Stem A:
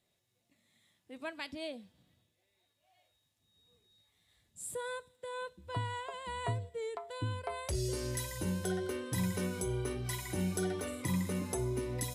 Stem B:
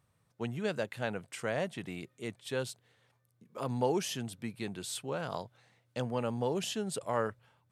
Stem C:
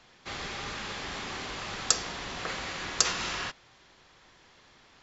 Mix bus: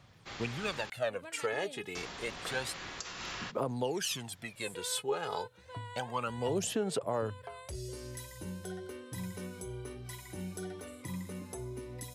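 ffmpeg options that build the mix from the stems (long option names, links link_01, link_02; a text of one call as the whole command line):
ffmpeg -i stem1.wav -i stem2.wav -i stem3.wav -filter_complex "[0:a]volume=-7dB[link_01];[1:a]acrossover=split=350|3000[link_02][link_03][link_04];[link_02]acompressor=threshold=-46dB:ratio=6[link_05];[link_05][link_03][link_04]amix=inputs=3:normalize=0,aphaser=in_gain=1:out_gain=1:delay=2.4:decay=0.74:speed=0.29:type=sinusoidal,volume=1dB[link_06];[2:a]volume=-7dB,asplit=3[link_07][link_08][link_09];[link_07]atrim=end=0.9,asetpts=PTS-STARTPTS,afade=type=out:start_time=0.896:duration=0.004:curve=hsin[link_10];[link_08]atrim=start=0.9:end=1.95,asetpts=PTS-STARTPTS,volume=0[link_11];[link_09]atrim=start=1.95,asetpts=PTS-STARTPTS,afade=type=in:duration=0.004:curve=hsin[link_12];[link_10][link_11][link_12]concat=n=3:v=0:a=1[link_13];[link_01][link_06][link_13]amix=inputs=3:normalize=0,alimiter=limit=-22.5dB:level=0:latency=1:release=278" out.wav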